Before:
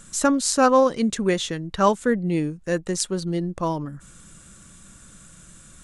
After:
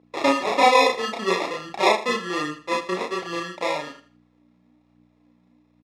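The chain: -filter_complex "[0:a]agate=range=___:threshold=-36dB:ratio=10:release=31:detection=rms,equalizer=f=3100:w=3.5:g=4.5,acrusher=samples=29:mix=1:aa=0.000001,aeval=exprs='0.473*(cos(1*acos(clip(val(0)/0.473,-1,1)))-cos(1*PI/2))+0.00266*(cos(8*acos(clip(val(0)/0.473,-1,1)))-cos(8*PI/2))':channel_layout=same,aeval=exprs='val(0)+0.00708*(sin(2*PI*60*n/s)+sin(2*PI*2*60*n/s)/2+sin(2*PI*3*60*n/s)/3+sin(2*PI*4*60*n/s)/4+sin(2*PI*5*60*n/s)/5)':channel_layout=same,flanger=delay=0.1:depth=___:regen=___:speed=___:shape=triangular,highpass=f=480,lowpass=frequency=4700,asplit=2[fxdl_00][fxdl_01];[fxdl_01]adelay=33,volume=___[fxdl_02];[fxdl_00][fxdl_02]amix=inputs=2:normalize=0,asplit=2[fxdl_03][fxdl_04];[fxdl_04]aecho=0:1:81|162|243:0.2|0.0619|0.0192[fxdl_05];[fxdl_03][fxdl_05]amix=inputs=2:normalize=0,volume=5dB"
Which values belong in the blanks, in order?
-22dB, 5.4, 43, 1.2, -2dB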